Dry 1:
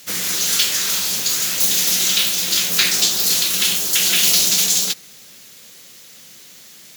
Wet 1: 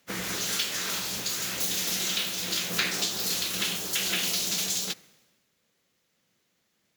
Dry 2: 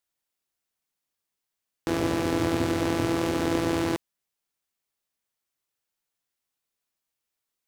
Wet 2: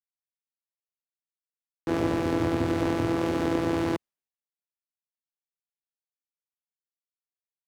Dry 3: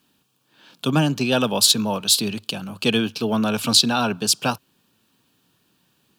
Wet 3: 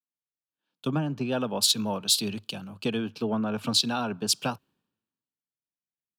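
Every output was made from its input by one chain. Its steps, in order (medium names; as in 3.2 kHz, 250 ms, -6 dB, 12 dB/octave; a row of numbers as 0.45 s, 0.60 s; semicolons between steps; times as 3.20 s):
treble shelf 3 kHz -9.5 dB; compression 6:1, threshold -23 dBFS; three bands expanded up and down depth 100%; normalise loudness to -27 LUFS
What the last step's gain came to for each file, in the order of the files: -2.0 dB, +2.5 dB, -2.0 dB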